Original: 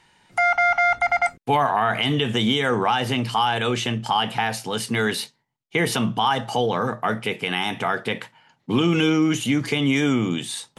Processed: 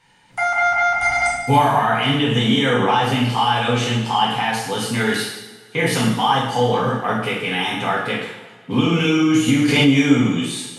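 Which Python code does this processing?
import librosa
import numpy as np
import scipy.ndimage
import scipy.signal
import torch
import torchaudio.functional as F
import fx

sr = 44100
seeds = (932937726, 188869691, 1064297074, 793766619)

y = fx.bass_treble(x, sr, bass_db=6, treble_db=10, at=(0.99, 1.79))
y = fx.rev_double_slope(y, sr, seeds[0], early_s=0.86, late_s=2.4, knee_db=-18, drr_db=-7.0)
y = fx.pre_swell(y, sr, db_per_s=30.0, at=(9.48, 9.89))
y = y * librosa.db_to_amplitude(-4.5)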